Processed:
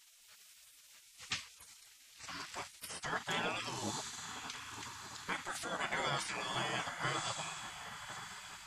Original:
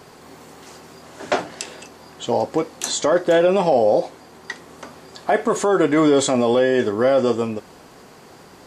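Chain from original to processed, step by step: echo that smears into a reverb 1093 ms, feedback 43%, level -10 dB; spectral gate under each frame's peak -20 dB weak; trim -6.5 dB

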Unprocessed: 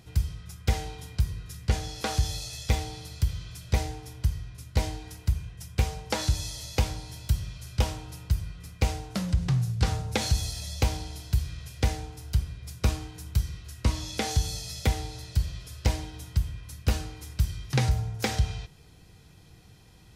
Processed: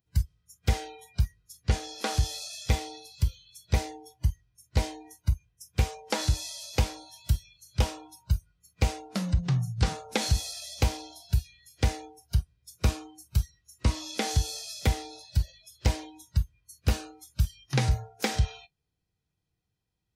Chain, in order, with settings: spectral noise reduction 29 dB

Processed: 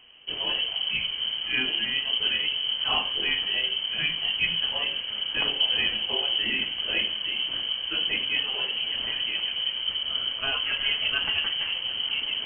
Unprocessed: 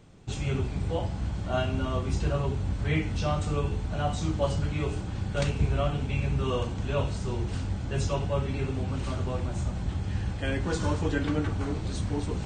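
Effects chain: frequency inversion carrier 3.1 kHz; treble shelf 2.2 kHz -10 dB; trim +6 dB

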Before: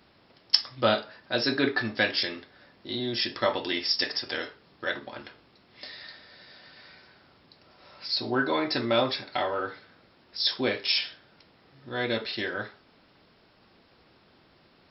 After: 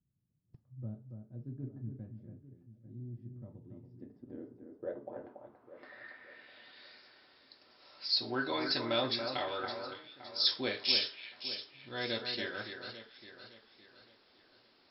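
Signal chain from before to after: integer overflow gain 6.5 dB; low-pass sweep 140 Hz -> 4.8 kHz, 3.72–7.00 s; spectral noise reduction 10 dB; on a send: echo whose repeats swap between lows and highs 282 ms, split 2.2 kHz, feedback 63%, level -6.5 dB; on the sum: trim -9 dB

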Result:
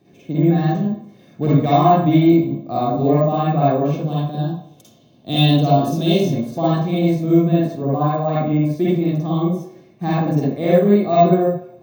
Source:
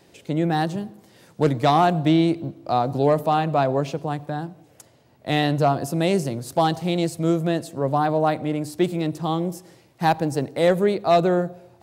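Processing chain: 4.02–6.25 s: resonant high shelf 2.6 kHz +6.5 dB, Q 3; reverberation RT60 0.55 s, pre-delay 48 ms, DRR -8 dB; careless resampling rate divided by 2×, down none, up hold; trim -14 dB

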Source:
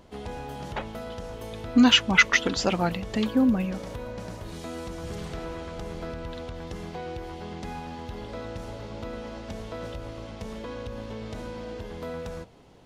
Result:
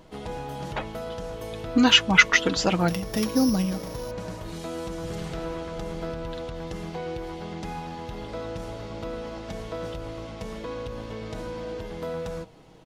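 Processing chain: 2.88–4.11 s: sorted samples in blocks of 8 samples; comb 6.3 ms, depth 41%; trim +1.5 dB

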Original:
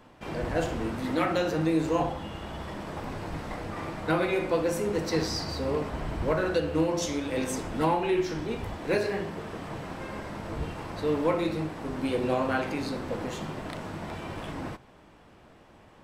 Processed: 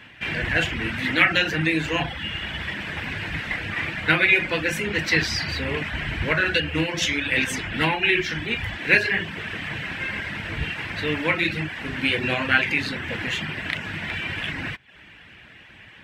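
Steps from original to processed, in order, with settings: high-pass 54 Hz; reverb removal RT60 0.52 s; FFT filter 120 Hz 0 dB, 530 Hz -9 dB, 1.2 kHz -5 dB, 1.7 kHz +12 dB, 2.8 kHz +13 dB, 4.7 kHz 0 dB, 8.7 kHz -4 dB; trim +7 dB

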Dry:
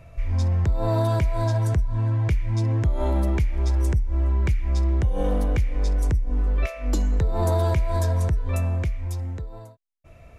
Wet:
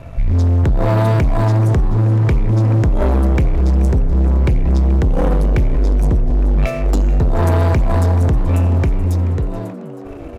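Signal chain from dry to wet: tilt shelf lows +3.5 dB, about 1.1 kHz; waveshaping leveller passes 3; frequency-shifting echo 431 ms, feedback 65%, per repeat +98 Hz, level -17 dB

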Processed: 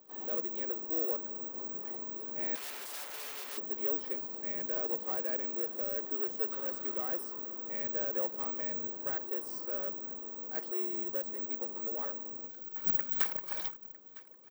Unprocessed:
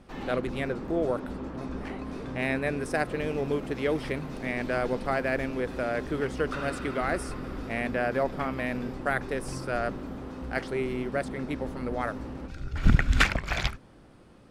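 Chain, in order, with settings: frequency shift -20 Hz; careless resampling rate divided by 2×, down filtered, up zero stuff; peaking EQ 2.2 kHz -11 dB 2 oct; band-stop 2.5 kHz, Q 15; comb of notches 690 Hz; on a send: delay 955 ms -23 dB; 2.55–3.58 s: on the sum: integer overflow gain 31.5 dB; high-pass 440 Hz 12 dB/octave; in parallel at -5 dB: hard clipper -31 dBFS, distortion -5 dB; on the sum: trim -8 dB

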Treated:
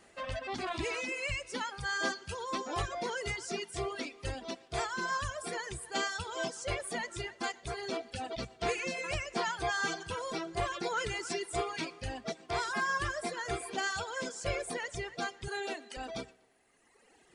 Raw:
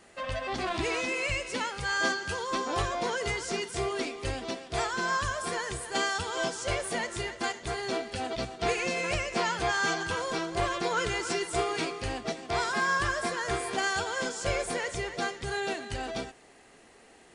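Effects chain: 15.48–15.97 s: steep high-pass 220 Hz; tape echo 120 ms, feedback 44%, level -13 dB, low-pass 4.4 kHz; reverb removal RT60 1.9 s; trim -3.5 dB

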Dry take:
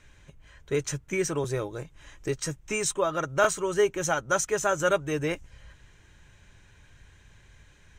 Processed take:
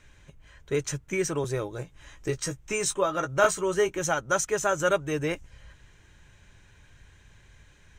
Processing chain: 1.74–3.99 s: doubling 16 ms -8 dB

